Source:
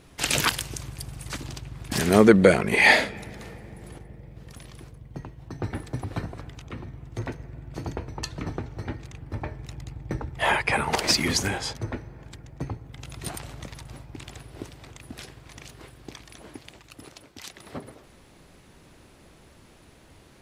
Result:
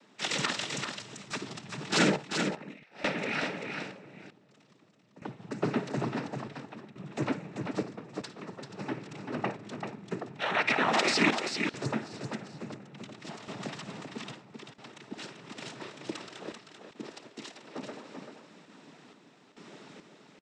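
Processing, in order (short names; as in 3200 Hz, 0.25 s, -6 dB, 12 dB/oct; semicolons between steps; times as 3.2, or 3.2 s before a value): LPF 5700 Hz 12 dB/oct; feedback echo 0.481 s, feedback 24%, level -22 dB; noise vocoder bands 12; HPF 170 Hz 24 dB/oct; negative-ratio compressor -26 dBFS, ratio -0.5; random-step tremolo 2.3 Hz, depth 95%; tapped delay 55/389 ms -15.5/-6 dB; gain +2 dB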